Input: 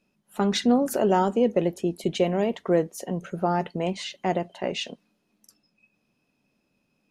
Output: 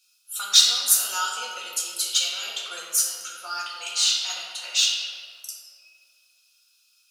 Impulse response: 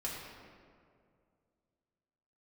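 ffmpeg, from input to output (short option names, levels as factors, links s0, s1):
-filter_complex "[0:a]flanger=delay=8.7:depth=6.3:regen=60:speed=0.29:shape=triangular,aexciter=amount=15.1:drive=9.6:freq=3100,asplit=2[s0][s1];[s1]asoftclip=type=tanh:threshold=0.335,volume=0.376[s2];[s0][s2]amix=inputs=2:normalize=0,highpass=f=1400:t=q:w=8.7[s3];[1:a]atrim=start_sample=2205[s4];[s3][s4]afir=irnorm=-1:irlink=0,volume=0.335"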